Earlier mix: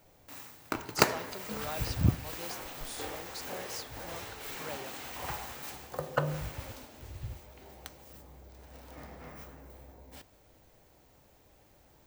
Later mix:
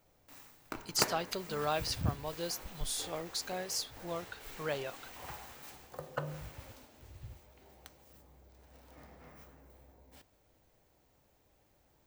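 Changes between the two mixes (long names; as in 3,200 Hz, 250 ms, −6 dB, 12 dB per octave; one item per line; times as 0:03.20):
speech +7.0 dB
background −8.0 dB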